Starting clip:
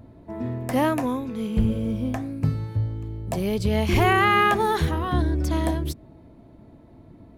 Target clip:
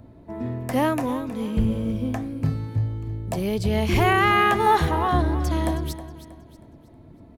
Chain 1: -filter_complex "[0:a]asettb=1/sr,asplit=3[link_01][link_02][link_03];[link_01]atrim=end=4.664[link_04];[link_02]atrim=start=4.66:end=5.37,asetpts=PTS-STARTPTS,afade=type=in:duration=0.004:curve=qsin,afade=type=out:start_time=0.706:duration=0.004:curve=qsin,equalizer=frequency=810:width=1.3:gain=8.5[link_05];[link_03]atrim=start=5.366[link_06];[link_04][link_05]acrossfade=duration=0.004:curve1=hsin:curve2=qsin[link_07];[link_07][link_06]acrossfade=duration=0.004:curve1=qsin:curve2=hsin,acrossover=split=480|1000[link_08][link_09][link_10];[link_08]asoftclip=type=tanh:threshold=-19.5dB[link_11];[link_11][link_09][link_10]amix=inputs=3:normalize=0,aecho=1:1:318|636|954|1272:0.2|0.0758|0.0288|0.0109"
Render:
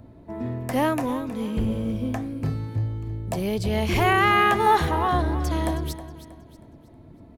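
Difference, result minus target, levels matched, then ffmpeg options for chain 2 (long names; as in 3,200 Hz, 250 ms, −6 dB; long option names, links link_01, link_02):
soft clipping: distortion +17 dB
-filter_complex "[0:a]asettb=1/sr,asplit=3[link_01][link_02][link_03];[link_01]atrim=end=4.664[link_04];[link_02]atrim=start=4.66:end=5.37,asetpts=PTS-STARTPTS,afade=type=in:duration=0.004:curve=qsin,afade=type=out:start_time=0.706:duration=0.004:curve=qsin,equalizer=frequency=810:width=1.3:gain=8.5[link_05];[link_03]atrim=start=5.366[link_06];[link_04][link_05]acrossfade=duration=0.004:curve1=hsin:curve2=qsin[link_07];[link_07][link_06]acrossfade=duration=0.004:curve1=qsin:curve2=hsin,acrossover=split=480|1000[link_08][link_09][link_10];[link_08]asoftclip=type=tanh:threshold=-8dB[link_11];[link_11][link_09][link_10]amix=inputs=3:normalize=0,aecho=1:1:318|636|954|1272:0.2|0.0758|0.0288|0.0109"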